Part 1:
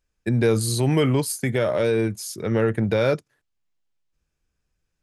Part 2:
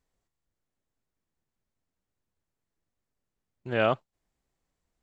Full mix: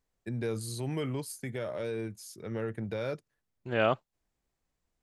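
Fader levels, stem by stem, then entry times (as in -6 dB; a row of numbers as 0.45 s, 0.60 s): -14.0 dB, -2.0 dB; 0.00 s, 0.00 s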